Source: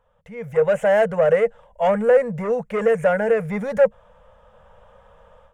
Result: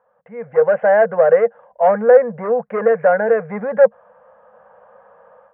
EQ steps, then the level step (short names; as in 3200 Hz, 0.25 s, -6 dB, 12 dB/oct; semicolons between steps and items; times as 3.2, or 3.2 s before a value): speaker cabinet 200–2100 Hz, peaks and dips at 230 Hz +5 dB, 330 Hz +7 dB, 510 Hz +6 dB, 740 Hz +9 dB, 1100 Hz +6 dB, 1600 Hz +7 dB; -2.0 dB